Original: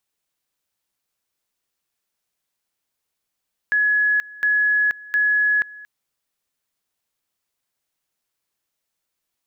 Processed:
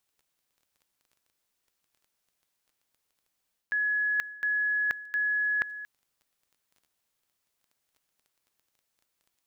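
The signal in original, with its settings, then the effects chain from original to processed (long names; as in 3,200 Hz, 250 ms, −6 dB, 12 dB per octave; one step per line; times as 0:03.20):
tone at two levels in turn 1,690 Hz −15 dBFS, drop 21.5 dB, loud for 0.48 s, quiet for 0.23 s, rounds 3
reversed playback
downward compressor 6 to 1, threshold −27 dBFS
reversed playback
surface crackle 10 per second −50 dBFS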